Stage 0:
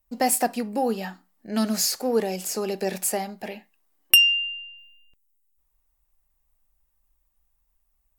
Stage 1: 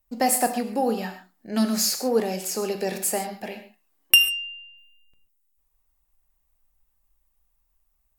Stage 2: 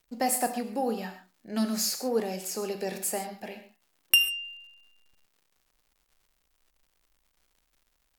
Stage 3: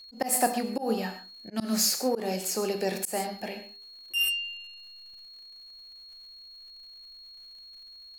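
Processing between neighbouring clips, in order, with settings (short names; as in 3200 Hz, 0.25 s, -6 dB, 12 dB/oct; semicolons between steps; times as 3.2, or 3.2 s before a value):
non-linear reverb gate 0.16 s flat, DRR 7.5 dB
crackle 220/s -49 dBFS; gain -5.5 dB
whine 4300 Hz -50 dBFS; de-hum 80.4 Hz, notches 6; auto swell 0.137 s; gain +4 dB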